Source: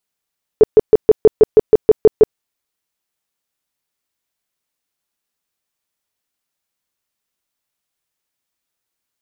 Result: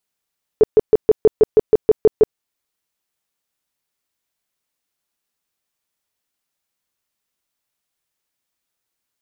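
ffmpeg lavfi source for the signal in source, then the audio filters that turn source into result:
-f lavfi -i "aevalsrc='0.794*sin(2*PI*433*mod(t,0.16))*lt(mod(t,0.16),11/433)':d=1.76:s=44100"
-af "alimiter=limit=-5.5dB:level=0:latency=1:release=402"

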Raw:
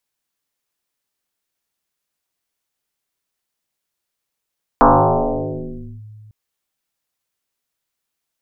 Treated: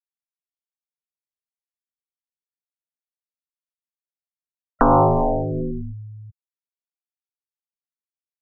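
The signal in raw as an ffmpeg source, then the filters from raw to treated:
-f lavfi -i "aevalsrc='0.531*pow(10,-3*t/2.58)*sin(2*PI*107*t+8.6*clip(1-t/1.21,0,1)*sin(2*PI*1.24*107*t))':d=1.5:s=44100"
-af "afftfilt=real='re*gte(hypot(re,im),0.0708)':imag='im*gte(hypot(re,im),0.0708)':win_size=1024:overlap=0.75,aphaser=in_gain=1:out_gain=1:delay=1.4:decay=0.37:speed=1.4:type=sinusoidal,acompressor=threshold=-12dB:ratio=6"

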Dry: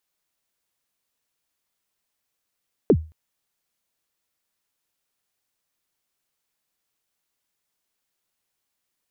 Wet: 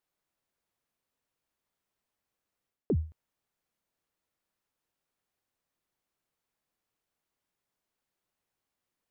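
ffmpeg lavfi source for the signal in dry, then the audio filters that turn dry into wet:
-f lavfi -i "aevalsrc='0.398*pow(10,-3*t/0.31)*sin(2*PI*(500*0.063/log(79/500)*(exp(log(79/500)*min(t,0.063)/0.063)-1)+79*max(t-0.063,0)))':d=0.22:s=44100"
-af "highshelf=f=2.1k:g=-10.5,areverse,acompressor=threshold=-27dB:ratio=6,areverse"

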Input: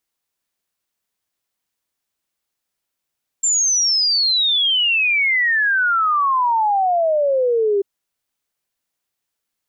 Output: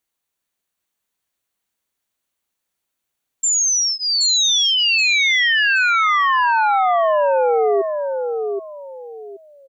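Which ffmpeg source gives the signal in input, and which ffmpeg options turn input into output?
-f lavfi -i "aevalsrc='0.2*clip(min(t,4.39-t)/0.01,0,1)*sin(2*PI*7400*4.39/log(390/7400)*(exp(log(390/7400)*t/4.39)-1))':d=4.39:s=44100"
-filter_complex "[0:a]bandreject=f=5.1k:w=8.7,asplit=2[a][b];[b]aecho=0:1:775|1550|2325:0.531|0.138|0.0359[c];[a][c]amix=inputs=2:normalize=0"

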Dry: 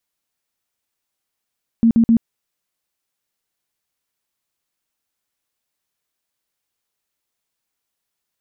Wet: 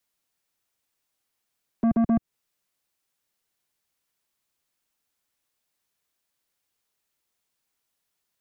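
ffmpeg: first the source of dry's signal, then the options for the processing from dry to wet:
-f lavfi -i "aevalsrc='0.355*sin(2*PI*229*mod(t,0.13))*lt(mod(t,0.13),18/229)':d=0.39:s=44100"
-filter_complex "[0:a]acrossover=split=150|210|400[a][b][c][d];[d]alimiter=level_in=13dB:limit=-24dB:level=0:latency=1:release=194,volume=-13dB[e];[a][b][c][e]amix=inputs=4:normalize=0,asoftclip=type=tanh:threshold=-18.5dB"

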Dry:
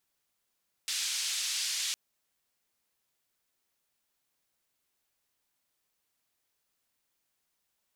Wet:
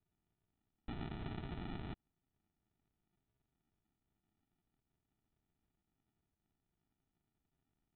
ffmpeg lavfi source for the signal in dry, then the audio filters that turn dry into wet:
-f lavfi -i "anoisesrc=c=white:d=1.06:r=44100:seed=1,highpass=f=3200,lowpass=f=6100,volume=-19.7dB"
-af "acompressor=threshold=-37dB:ratio=2.5,equalizer=f=590:w=1.3:g=6.5,aresample=8000,acrusher=samples=15:mix=1:aa=0.000001,aresample=44100"

